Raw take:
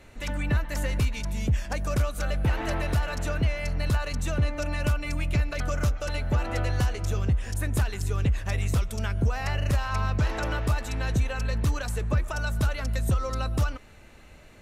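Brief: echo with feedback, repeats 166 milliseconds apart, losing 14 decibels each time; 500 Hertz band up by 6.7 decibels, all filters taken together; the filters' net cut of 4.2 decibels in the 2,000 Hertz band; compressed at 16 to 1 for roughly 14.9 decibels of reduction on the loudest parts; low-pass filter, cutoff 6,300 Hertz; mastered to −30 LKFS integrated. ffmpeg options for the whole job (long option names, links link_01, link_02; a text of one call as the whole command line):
ffmpeg -i in.wav -af "lowpass=6300,equalizer=frequency=500:width_type=o:gain=8.5,equalizer=frequency=2000:width_type=o:gain=-6.5,acompressor=threshold=-34dB:ratio=16,aecho=1:1:166|332:0.2|0.0399,volume=9.5dB" out.wav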